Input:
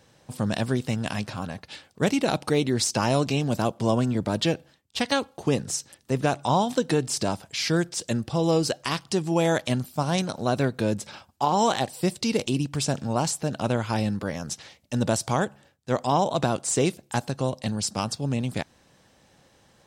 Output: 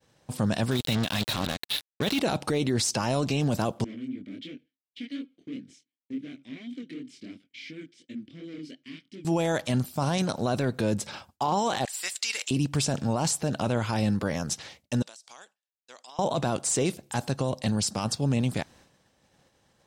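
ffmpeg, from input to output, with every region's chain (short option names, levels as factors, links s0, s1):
-filter_complex "[0:a]asettb=1/sr,asplit=3[s0][s1][s2];[s0]atrim=end=0.714[s3];[s1]atrim=start=0.71:end=2.2,asetpts=PTS-STARTPTS,afade=t=in:d=0.004:c=qsin,afade=t=out:st=1.486:d=0.004:c=qsin,lowpass=f=3800:t=q:w=6.1,acrusher=bits=4:mix=0:aa=0.5[s4];[s2]atrim=start=2.196[s5];[s3][s4]acrossfade=d=0.004:c1=hsin:c2=qsin[s6];[s6][s5]acrossfade=d=0.004:c1=qsin:c2=hsin,asettb=1/sr,asplit=3[s7][s8][s9];[s7]atrim=end=3.844[s10];[s8]atrim=start=3.84:end=9.25,asetpts=PTS-STARTPTS,afade=t=in:d=0.004:c=qsin,afade=t=out:st=5.406:d=0.004:c=qsin,flanger=delay=20:depth=6.5:speed=2.8,asoftclip=type=hard:threshold=0.0501,asplit=3[s11][s12][s13];[s11]bandpass=f=270:t=q:w=8,volume=1[s14];[s12]bandpass=f=2290:t=q:w=8,volume=0.501[s15];[s13]bandpass=f=3010:t=q:w=8,volume=0.355[s16];[s14][s15][s16]amix=inputs=3:normalize=0[s17];[s9]atrim=start=9.246[s18];[s10][s17]acrossfade=d=0.004:c1=hsin:c2=qsin[s19];[s19][s18]acrossfade=d=0.004:c1=qsin:c2=hsin,asettb=1/sr,asplit=3[s20][s21][s22];[s20]atrim=end=11.854[s23];[s21]atrim=start=11.85:end=12.51,asetpts=PTS-STARTPTS,afade=t=in:d=0.004:c=qsin,afade=t=out:st=0.656:d=0.004:c=qsin,highpass=f=1700:t=q:w=1.5,equalizer=f=7200:w=5:g=9.5[s24];[s22]atrim=start=12.506[s25];[s23][s24]acrossfade=d=0.004:c1=hsin:c2=qsin[s26];[s26][s25]acrossfade=d=0.004:c1=qsin:c2=hsin,asettb=1/sr,asplit=3[s27][s28][s29];[s27]atrim=end=15.024[s30];[s28]atrim=start=15.02:end=16.19,asetpts=PTS-STARTPTS,afade=t=in:d=0.004:c=qsin,afade=t=out:st=1.166:d=0.004:c=qsin,aderivative,acompressor=threshold=0.00708:ratio=20:attack=3.2:release=140:knee=1:detection=peak,highpass=220,lowpass=6200[s31];[s29]atrim=start=16.186[s32];[s30][s31]acrossfade=d=0.004:c1=hsin:c2=qsin[s33];[s33][s32]acrossfade=d=0.004:c1=qsin:c2=hsin,agate=range=0.0224:threshold=0.00282:ratio=3:detection=peak,alimiter=limit=0.1:level=0:latency=1:release=10,volume=1.33"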